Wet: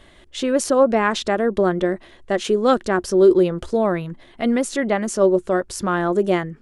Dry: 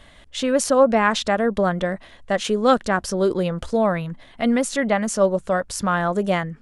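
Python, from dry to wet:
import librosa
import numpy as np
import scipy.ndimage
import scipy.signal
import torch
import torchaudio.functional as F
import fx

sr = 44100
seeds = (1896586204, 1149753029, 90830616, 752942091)

y = fx.peak_eq(x, sr, hz=360.0, db=14.5, octaves=0.33)
y = y * 10.0 ** (-1.5 / 20.0)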